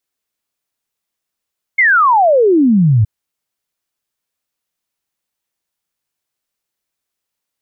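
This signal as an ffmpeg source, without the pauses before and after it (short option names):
-f lavfi -i "aevalsrc='0.447*clip(min(t,1.27-t)/0.01,0,1)*sin(2*PI*2200*1.27/log(100/2200)*(exp(log(100/2200)*t/1.27)-1))':d=1.27:s=44100"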